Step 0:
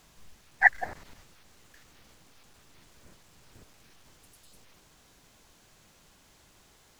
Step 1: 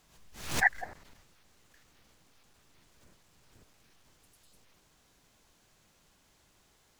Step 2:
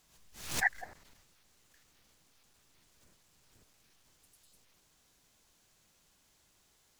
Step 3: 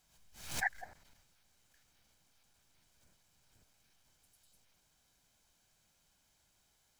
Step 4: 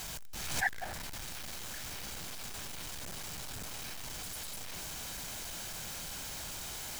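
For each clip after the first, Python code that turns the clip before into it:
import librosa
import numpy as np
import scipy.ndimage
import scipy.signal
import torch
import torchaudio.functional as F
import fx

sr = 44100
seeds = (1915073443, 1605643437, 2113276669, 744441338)

y1 = fx.pre_swell(x, sr, db_per_s=97.0)
y1 = F.gain(torch.from_numpy(y1), -6.5).numpy()
y2 = fx.high_shelf(y1, sr, hz=3300.0, db=7.0)
y2 = F.gain(torch.from_numpy(y2), -6.0).numpy()
y3 = y2 + 0.33 * np.pad(y2, (int(1.3 * sr / 1000.0), 0))[:len(y2)]
y3 = F.gain(torch.from_numpy(y3), -5.0).numpy()
y4 = y3 + 0.5 * 10.0 ** (-37.5 / 20.0) * np.sign(y3)
y4 = F.gain(torch.from_numpy(y4), 1.5).numpy()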